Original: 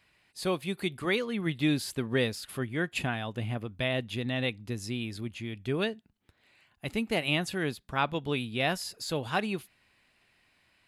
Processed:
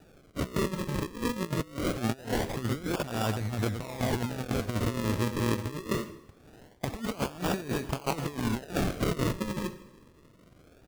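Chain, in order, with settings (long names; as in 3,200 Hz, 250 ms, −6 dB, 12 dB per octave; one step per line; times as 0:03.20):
slap from a distant wall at 19 metres, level −12 dB
sample-and-hold swept by an LFO 41×, swing 100% 0.23 Hz
convolution reverb RT60 0.90 s, pre-delay 58 ms, DRR 19 dB
compressor whose output falls as the input rises −36 dBFS, ratio −0.5
level +5.5 dB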